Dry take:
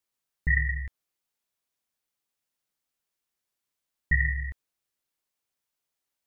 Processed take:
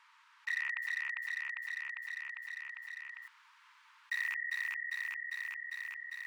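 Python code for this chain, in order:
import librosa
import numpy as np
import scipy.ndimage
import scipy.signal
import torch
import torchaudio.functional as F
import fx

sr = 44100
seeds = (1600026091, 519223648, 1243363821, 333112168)

y = fx.rattle_buzz(x, sr, strikes_db=-27.0, level_db=-21.0)
y = scipy.signal.sosfilt(scipy.signal.butter(2, 1800.0, 'lowpass', fs=sr, output='sos'), y)
y = fx.clip_asym(y, sr, top_db=-21.5, bottom_db=-17.5)
y = fx.quant_float(y, sr, bits=4, at=(0.82, 4.34))
y = fx.brickwall_highpass(y, sr, low_hz=860.0)
y = fx.echo_feedback(y, sr, ms=400, feedback_pct=51, wet_db=-5)
y = fx.env_flatten(y, sr, amount_pct=70)
y = y * librosa.db_to_amplitude(-6.5)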